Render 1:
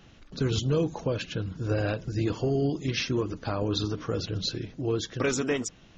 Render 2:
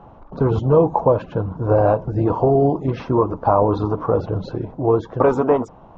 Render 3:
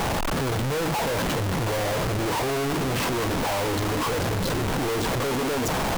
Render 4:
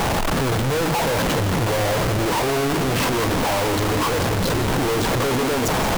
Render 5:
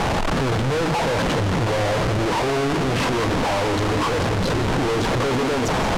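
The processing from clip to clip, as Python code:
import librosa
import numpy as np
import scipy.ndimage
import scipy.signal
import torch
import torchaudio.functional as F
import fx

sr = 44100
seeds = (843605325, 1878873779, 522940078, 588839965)

y1 = fx.curve_eq(x, sr, hz=(320.0, 950.0, 1800.0, 5800.0), db=(0, 15, -13, -27))
y1 = y1 * 10.0 ** (8.0 / 20.0)
y2 = np.sign(y1) * np.sqrt(np.mean(np.square(y1)))
y2 = y2 * 10.0 ** (-6.5 / 20.0)
y3 = y2 + 10.0 ** (-11.5 / 20.0) * np.pad(y2, (int(170 * sr / 1000.0), 0))[:len(y2)]
y3 = y3 * 10.0 ** (4.5 / 20.0)
y4 = fx.air_absorb(y3, sr, metres=60.0)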